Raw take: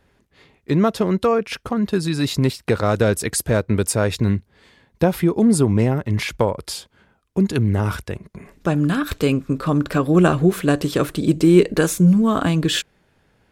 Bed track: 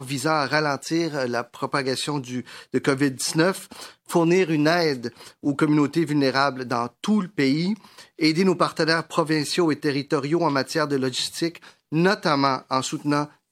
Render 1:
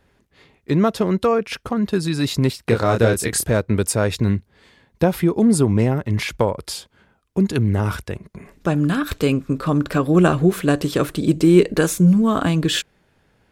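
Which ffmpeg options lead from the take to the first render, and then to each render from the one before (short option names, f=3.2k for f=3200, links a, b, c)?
-filter_complex "[0:a]asettb=1/sr,asplit=3[a][b][c];[a]atrim=end=2.674[d];[b]atrim=start=2.67:end=3.45,asetpts=PTS-STARTPTS,afade=t=in:d=0.004:c=qsin,afade=t=out:st=0.776:d=0.004:c=qsin,asplit=2[e][f];[f]adelay=26,volume=-4dB[g];[e][g]amix=inputs=2:normalize=0,atrim=end_sample=34398[h];[c]atrim=start=3.446[i];[d][h]acrossfade=d=0.004:c1=hsin:c2=qsin[j];[j][i]acrossfade=d=0.004:c1=qsin:c2=hsin"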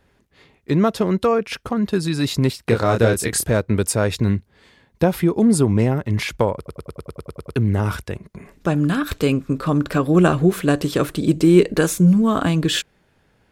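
-filter_complex "[0:a]asplit=11[a][b][c][d][e][f][g][h][i][j][k];[a]atrim=end=6.662[l];[b]atrim=start=6.558:end=6.662[m];[c]atrim=start=6.558:end=6.662[n];[d]atrim=start=6.558:end=6.662[o];[e]atrim=start=6.558:end=6.662[p];[f]atrim=start=6.558:end=6.662[q];[g]atrim=start=6.558:end=6.662[r];[h]atrim=start=6.558:end=6.662[s];[i]atrim=start=6.558:end=6.662[t];[j]atrim=start=6.558:end=6.662[u];[k]atrim=start=7.558[v];[l][m]acrossfade=d=0.004:c1=hsin:c2=hsin[w];[w][n]acrossfade=d=0.004:c1=hsin:c2=hsin[x];[x][o]acrossfade=d=0.004:c1=hsin:c2=hsin[y];[y][p]acrossfade=d=0.004:c1=hsin:c2=hsin[z];[z][q]acrossfade=d=0.004:c1=hsin:c2=hsin[aa];[aa][r]acrossfade=d=0.004:c1=hsin:c2=hsin[ab];[ab][s]acrossfade=d=0.004:c1=hsin:c2=hsin[ac];[ac][t]acrossfade=d=0.004:c1=hsin:c2=hsin[ad];[ad][u]acrossfade=d=0.004:c1=hsin:c2=hsin[ae];[ae][v]acrossfade=d=0.004:c1=hsin:c2=hsin"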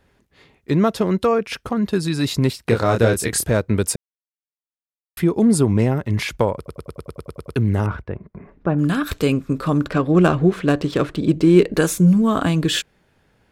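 -filter_complex "[0:a]asettb=1/sr,asplit=3[a][b][c];[a]atrim=end=7.864[d];[b]atrim=start=7.86:end=8.79,asetpts=PTS-STARTPTS,afade=t=in:d=0.004:c=qsin,afade=t=out:st=0.926:d=0.004:c=qsin,lowpass=1.5k[e];[c]atrim=start=8.786[f];[d][e]acrossfade=d=0.004:c1=hsin:c2=qsin[g];[g][f]acrossfade=d=0.004:c1=qsin:c2=hsin,asettb=1/sr,asplit=3[h][i][j];[h]atrim=end=9.884[k];[i]atrim=start=9.88:end=11.74,asetpts=PTS-STARTPTS,afade=t=in:d=0.004:c=qsin,afade=t=out:st=1.856:d=0.004:c=qsin,adynamicsmooth=sensitivity=2.5:basefreq=3.6k[l];[j]atrim=start=11.736[m];[k][l]acrossfade=d=0.004:c1=hsin:c2=qsin[n];[n][m]acrossfade=d=0.004:c1=qsin:c2=hsin,asplit=3[o][p][q];[o]atrim=end=3.96,asetpts=PTS-STARTPTS,afade=t=out:st=3.956:d=0.004:c=hsin[r];[p]atrim=start=3.96:end=5.17,asetpts=PTS-STARTPTS,volume=0[s];[q]atrim=start=5.17,asetpts=PTS-STARTPTS,afade=t=in:d=0.004:c=hsin[t];[r][s][t]concat=n=3:v=0:a=1"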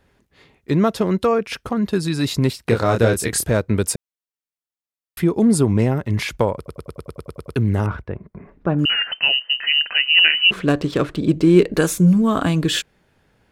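-filter_complex "[0:a]asettb=1/sr,asplit=3[a][b][c];[a]atrim=end=8.854[d];[b]atrim=start=8.85:end=10.51,asetpts=PTS-STARTPTS,afade=t=in:d=0.004:c=qsin,afade=t=out:st=1.656:d=0.004:c=qsin,lowpass=f=2.6k:t=q:w=0.5098,lowpass=f=2.6k:t=q:w=0.6013,lowpass=f=2.6k:t=q:w=0.9,lowpass=f=2.6k:t=q:w=2.563,afreqshift=-3100[e];[c]atrim=start=10.506[f];[d][e]acrossfade=d=0.004:c1=hsin:c2=qsin[g];[g][f]acrossfade=d=0.004:c1=qsin:c2=hsin"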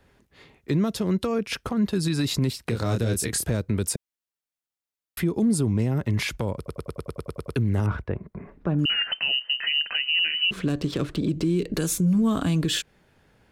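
-filter_complex "[0:a]acrossover=split=310|3000[a][b][c];[b]acompressor=threshold=-27dB:ratio=6[d];[a][d][c]amix=inputs=3:normalize=0,alimiter=limit=-15.5dB:level=0:latency=1:release=108"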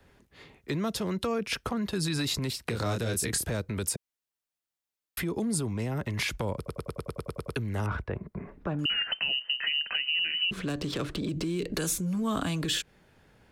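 -filter_complex "[0:a]acrossover=split=550|1200[a][b][c];[a]alimiter=level_in=2dB:limit=-24dB:level=0:latency=1,volume=-2dB[d];[d][b][c]amix=inputs=3:normalize=0,acrossover=split=330[e][f];[f]acompressor=threshold=-27dB:ratio=3[g];[e][g]amix=inputs=2:normalize=0"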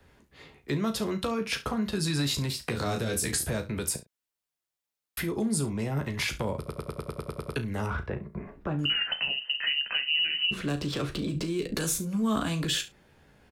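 -filter_complex "[0:a]asplit=2[a][b];[b]adelay=36,volume=-11.5dB[c];[a][c]amix=inputs=2:normalize=0,aecho=1:1:14|69:0.398|0.158"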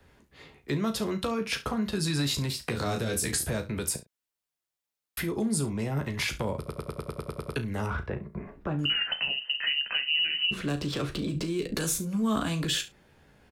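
-af anull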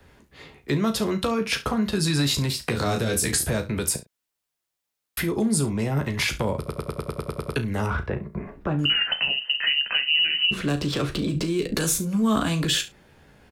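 -af "volume=5.5dB"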